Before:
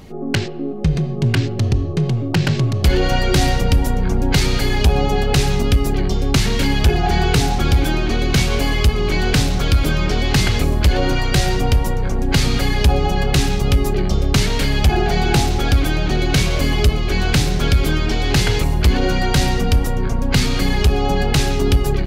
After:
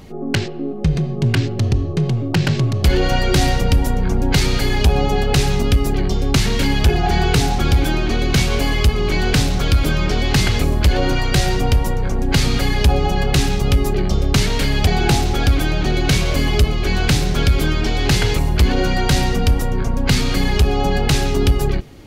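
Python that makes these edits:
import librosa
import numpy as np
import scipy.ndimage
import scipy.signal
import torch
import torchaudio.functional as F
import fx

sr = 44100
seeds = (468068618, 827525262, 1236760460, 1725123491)

y = fx.edit(x, sr, fx.cut(start_s=14.87, length_s=0.25), tone=tone)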